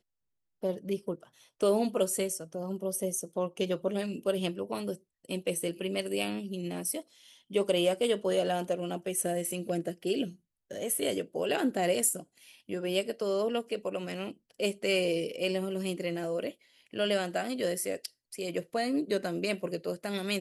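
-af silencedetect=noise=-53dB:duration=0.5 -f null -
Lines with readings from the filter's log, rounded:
silence_start: 0.00
silence_end: 0.62 | silence_duration: 0.62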